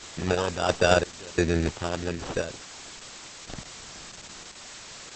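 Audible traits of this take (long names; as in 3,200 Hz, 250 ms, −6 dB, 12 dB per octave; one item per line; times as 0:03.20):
aliases and images of a low sample rate 2,100 Hz, jitter 0%
sample-and-hold tremolo 2.9 Hz, depth 95%
a quantiser's noise floor 8 bits, dither triangular
Opus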